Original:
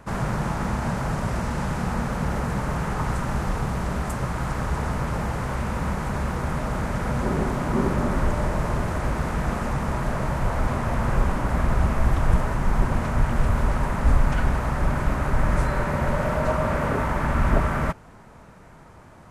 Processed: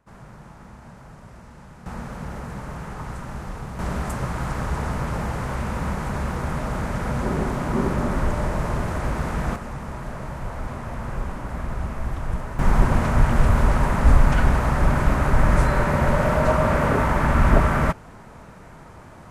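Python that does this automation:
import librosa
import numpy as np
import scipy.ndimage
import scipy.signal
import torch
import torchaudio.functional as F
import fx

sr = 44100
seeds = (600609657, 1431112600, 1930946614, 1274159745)

y = fx.gain(x, sr, db=fx.steps((0.0, -18.0), (1.86, -7.5), (3.79, 0.0), (9.56, -7.0), (12.59, 4.0)))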